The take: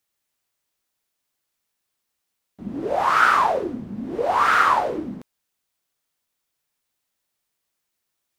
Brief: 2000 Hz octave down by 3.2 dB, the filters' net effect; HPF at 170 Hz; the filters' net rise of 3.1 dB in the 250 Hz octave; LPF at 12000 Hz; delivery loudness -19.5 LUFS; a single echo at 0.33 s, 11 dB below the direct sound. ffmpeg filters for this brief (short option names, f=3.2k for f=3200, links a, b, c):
-af "highpass=170,lowpass=12k,equalizer=f=250:t=o:g=5,equalizer=f=2k:t=o:g=-5,aecho=1:1:330:0.282,volume=2dB"